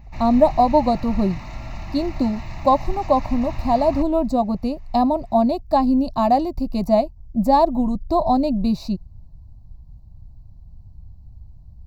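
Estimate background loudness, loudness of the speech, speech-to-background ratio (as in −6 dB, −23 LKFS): −35.5 LKFS, −20.0 LKFS, 15.5 dB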